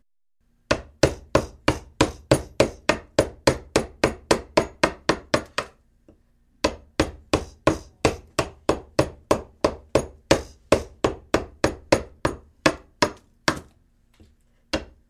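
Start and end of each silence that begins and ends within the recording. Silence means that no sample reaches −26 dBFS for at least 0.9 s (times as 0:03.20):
0:05.62–0:06.64
0:13.57–0:14.73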